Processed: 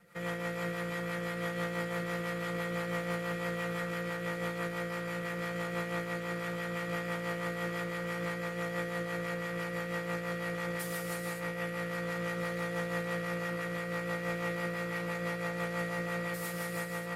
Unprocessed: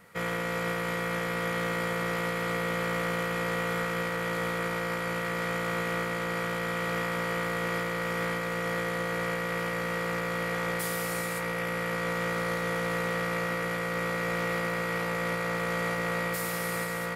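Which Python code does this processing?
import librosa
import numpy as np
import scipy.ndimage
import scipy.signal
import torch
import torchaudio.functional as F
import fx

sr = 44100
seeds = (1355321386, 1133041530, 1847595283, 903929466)

y = fx.rotary(x, sr, hz=6.0)
y = y + 0.96 * np.pad(y, (int(5.8 * sr / 1000.0), 0))[:len(y)]
y = y * 10.0 ** (-7.0 / 20.0)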